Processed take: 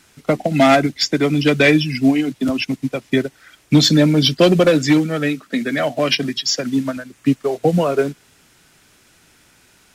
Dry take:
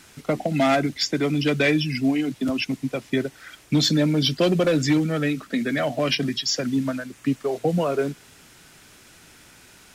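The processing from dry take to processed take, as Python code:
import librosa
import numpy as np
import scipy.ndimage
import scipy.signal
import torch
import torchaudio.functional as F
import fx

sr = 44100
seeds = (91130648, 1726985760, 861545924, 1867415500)

y = fx.low_shelf(x, sr, hz=92.0, db=-10.5, at=(4.7, 6.97))
y = fx.upward_expand(y, sr, threshold_db=-39.0, expansion=1.5)
y = F.gain(torch.from_numpy(y), 8.5).numpy()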